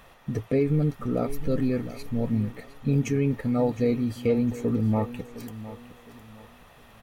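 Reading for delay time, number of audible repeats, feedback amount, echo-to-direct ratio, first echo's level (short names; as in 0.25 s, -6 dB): 0.711 s, 3, 33%, -14.5 dB, -15.0 dB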